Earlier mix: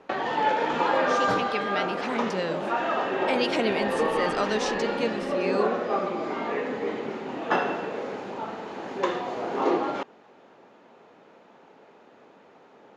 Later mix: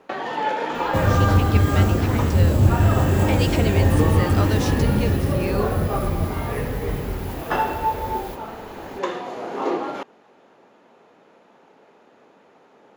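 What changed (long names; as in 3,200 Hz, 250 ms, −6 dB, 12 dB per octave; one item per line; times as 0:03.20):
second sound: unmuted
master: remove low-pass filter 6,700 Hz 12 dB per octave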